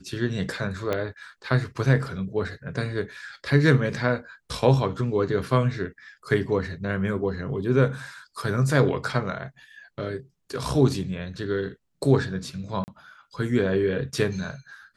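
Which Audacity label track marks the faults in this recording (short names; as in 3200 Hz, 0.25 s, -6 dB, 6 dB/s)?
0.930000	0.930000	pop -13 dBFS
12.840000	12.880000	gap 39 ms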